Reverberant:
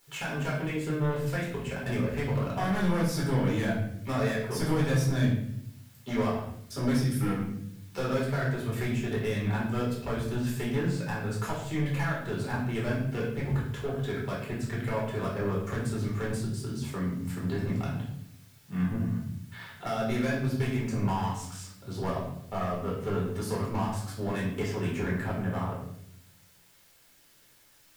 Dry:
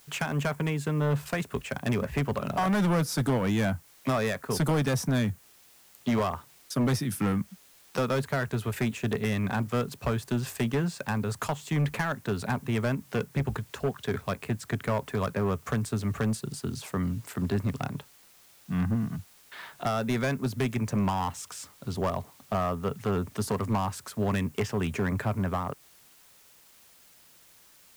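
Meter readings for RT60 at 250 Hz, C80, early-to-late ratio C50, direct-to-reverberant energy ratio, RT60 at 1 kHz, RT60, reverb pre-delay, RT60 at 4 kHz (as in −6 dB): 1.2 s, 7.0 dB, 3.5 dB, −5.5 dB, 0.60 s, 0.75 s, 5 ms, 0.65 s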